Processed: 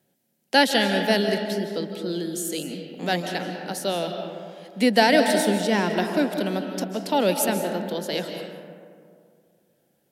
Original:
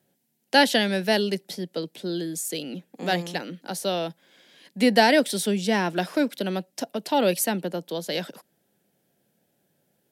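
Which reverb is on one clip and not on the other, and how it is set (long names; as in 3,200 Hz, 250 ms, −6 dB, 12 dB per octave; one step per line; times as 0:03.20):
comb and all-pass reverb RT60 2.2 s, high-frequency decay 0.4×, pre-delay 115 ms, DRR 5 dB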